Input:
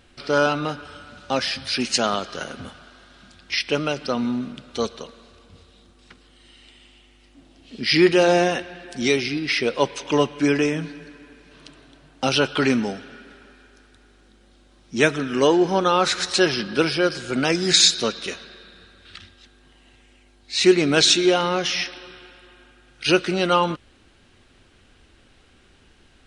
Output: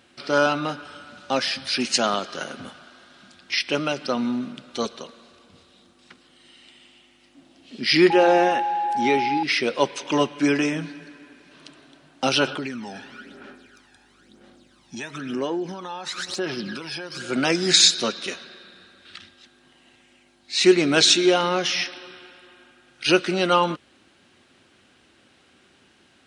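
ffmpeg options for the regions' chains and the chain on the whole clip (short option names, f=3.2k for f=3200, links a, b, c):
-filter_complex "[0:a]asettb=1/sr,asplit=3[a][b][c];[a]atrim=end=8.104[d];[b]atrim=start=8.1:end=9.43,asetpts=PTS-STARTPTS,afade=t=in:d=0.004:c=qsin,afade=t=out:st=1.326:d=0.004:c=qsin,acrossover=split=2900[e][f];[f]acompressor=threshold=-41dB:ratio=4:attack=1:release=60[g];[e][g]amix=inputs=2:normalize=0,equalizer=f=170:w=6.5:g=-9,aeval=exprs='val(0)+0.0891*sin(2*PI*830*n/s)':c=same[h];[c]atrim=start=9.426[i];[d][h]acrossfade=d=0.004:c1=hsin:c2=qsin[j];[j][i]acrossfade=d=0.004:c1=qsin:c2=hsin,asettb=1/sr,asplit=3[k][l][m];[k]atrim=end=12.474[n];[l]atrim=start=12.47:end=17.22,asetpts=PTS-STARTPTS,afade=t=in:d=0.004:c=qsin,afade=t=out:st=4.746:d=0.004:c=qsin,acompressor=threshold=-29dB:ratio=8:attack=3.2:release=140:knee=1:detection=peak,aphaser=in_gain=1:out_gain=1:delay=1.2:decay=0.6:speed=1:type=sinusoidal[o];[m]atrim=start=17.216[p];[n][o]acrossfade=d=0.004:c1=hsin:c2=qsin[q];[q][p]acrossfade=d=0.004:c1=qsin:c2=hsin,highpass=160,bandreject=f=450:w=12"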